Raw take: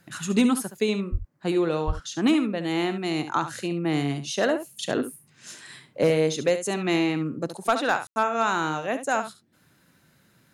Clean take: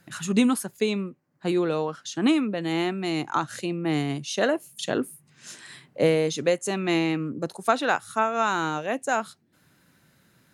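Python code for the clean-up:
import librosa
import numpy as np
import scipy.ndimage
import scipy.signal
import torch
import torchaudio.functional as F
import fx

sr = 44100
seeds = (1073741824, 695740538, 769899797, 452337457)

y = fx.fix_declip(x, sr, threshold_db=-12.5)
y = fx.fix_deplosive(y, sr, at_s=(1.11, 1.86))
y = fx.fix_ambience(y, sr, seeds[0], print_start_s=9.4, print_end_s=9.9, start_s=8.07, end_s=8.16)
y = fx.fix_echo_inverse(y, sr, delay_ms=70, level_db=-11.0)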